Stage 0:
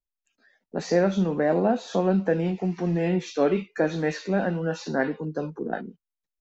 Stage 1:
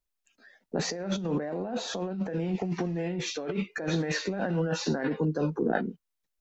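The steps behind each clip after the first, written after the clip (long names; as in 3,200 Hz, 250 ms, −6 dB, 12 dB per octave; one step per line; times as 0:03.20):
compressor whose output falls as the input rises −30 dBFS, ratio −1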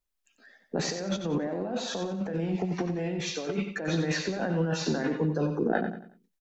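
repeating echo 91 ms, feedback 35%, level −8.5 dB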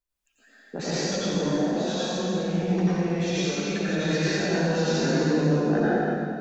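convolution reverb RT60 2.3 s, pre-delay 84 ms, DRR −9 dB
level −4.5 dB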